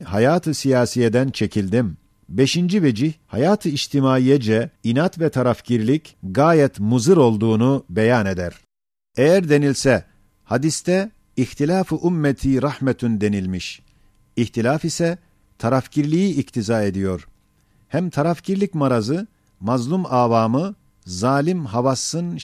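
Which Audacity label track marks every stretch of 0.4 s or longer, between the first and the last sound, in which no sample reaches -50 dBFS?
8.650000	9.160000	silence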